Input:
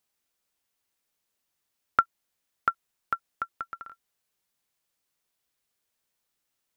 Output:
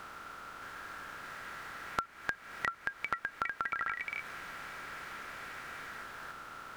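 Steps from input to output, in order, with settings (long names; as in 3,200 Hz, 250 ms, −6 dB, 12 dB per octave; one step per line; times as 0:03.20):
compressor on every frequency bin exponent 0.4
delay with pitch and tempo change per echo 621 ms, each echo +3 semitones, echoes 3
downward compressor 5 to 1, threshold −34 dBFS, peak gain reduction 17 dB
level +1.5 dB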